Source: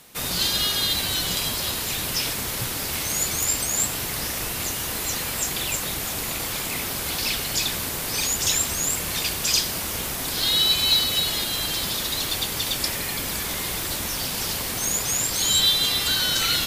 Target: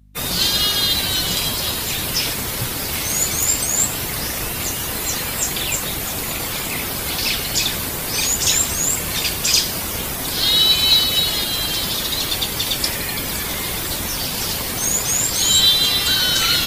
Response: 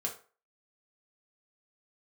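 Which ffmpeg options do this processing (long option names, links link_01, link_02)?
-af "afftdn=noise_reduction=32:noise_floor=-37,areverse,acompressor=mode=upward:threshold=-37dB:ratio=2.5,areverse,aeval=exprs='val(0)+0.00224*(sin(2*PI*50*n/s)+sin(2*PI*2*50*n/s)/2+sin(2*PI*3*50*n/s)/3+sin(2*PI*4*50*n/s)/4+sin(2*PI*5*50*n/s)/5)':channel_layout=same,volume=5.5dB"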